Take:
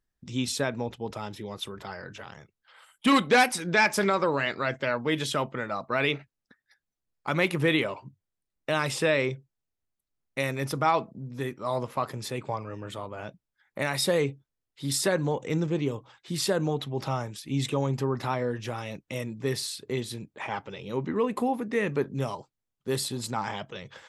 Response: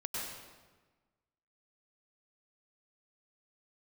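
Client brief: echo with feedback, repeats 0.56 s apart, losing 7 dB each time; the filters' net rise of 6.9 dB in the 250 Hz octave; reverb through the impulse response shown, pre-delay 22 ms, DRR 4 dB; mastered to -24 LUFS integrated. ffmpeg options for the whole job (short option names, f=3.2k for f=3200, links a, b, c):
-filter_complex "[0:a]equalizer=f=250:t=o:g=8.5,aecho=1:1:560|1120|1680|2240|2800:0.447|0.201|0.0905|0.0407|0.0183,asplit=2[a][b];[1:a]atrim=start_sample=2205,adelay=22[c];[b][c]afir=irnorm=-1:irlink=0,volume=-6.5dB[d];[a][d]amix=inputs=2:normalize=0,volume=-0.5dB"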